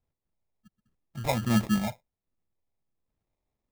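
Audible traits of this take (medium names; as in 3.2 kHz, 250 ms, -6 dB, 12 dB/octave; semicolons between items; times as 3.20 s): phasing stages 4, 1.4 Hz, lowest notch 260–1500 Hz; aliases and images of a low sample rate 1.5 kHz, jitter 0%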